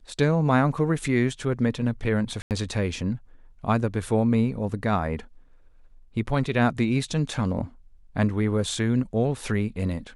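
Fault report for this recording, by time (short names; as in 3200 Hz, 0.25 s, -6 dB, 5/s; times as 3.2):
2.42–2.51 gap 88 ms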